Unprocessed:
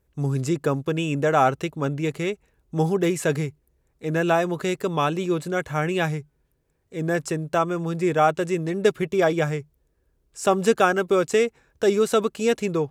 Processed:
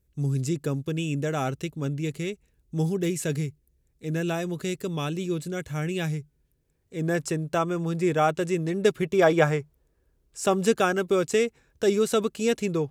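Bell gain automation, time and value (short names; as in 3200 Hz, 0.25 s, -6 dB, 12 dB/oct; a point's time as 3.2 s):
bell 950 Hz 2.3 oct
6.02 s -13.5 dB
7.08 s -4.5 dB
9.02 s -4.5 dB
9.43 s +5.5 dB
10.62 s -6 dB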